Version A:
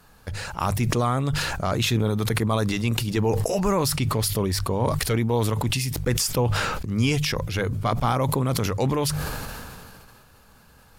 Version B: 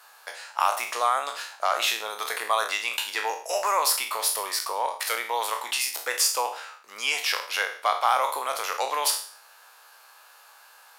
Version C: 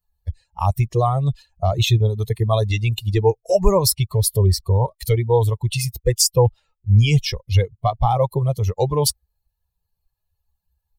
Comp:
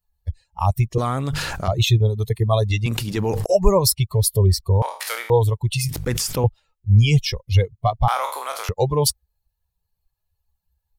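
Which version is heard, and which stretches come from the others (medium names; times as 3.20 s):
C
0.98–1.68 s: from A
2.86–3.46 s: from A
4.82–5.30 s: from B
5.89–6.44 s: from A
8.08–8.69 s: from B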